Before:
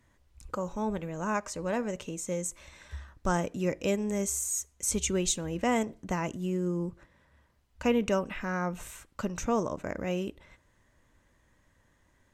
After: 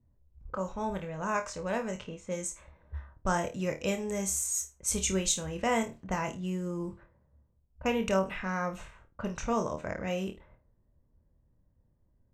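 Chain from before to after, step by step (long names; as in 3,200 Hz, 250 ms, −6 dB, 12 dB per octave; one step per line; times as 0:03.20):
low-pass that shuts in the quiet parts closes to 340 Hz, open at −28 dBFS
parametric band 300 Hz −7 dB 0.88 octaves
flutter between parallel walls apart 4.5 metres, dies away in 0.23 s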